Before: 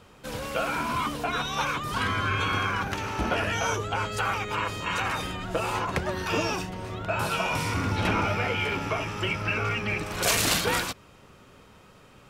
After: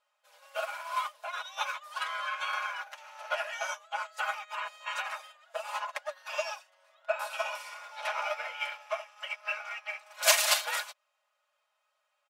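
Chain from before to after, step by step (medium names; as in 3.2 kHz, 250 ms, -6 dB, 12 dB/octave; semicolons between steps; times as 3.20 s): brick-wall FIR high-pass 500 Hz; comb 4.8 ms, depth 83%; upward expansion 2.5:1, over -36 dBFS; trim +1.5 dB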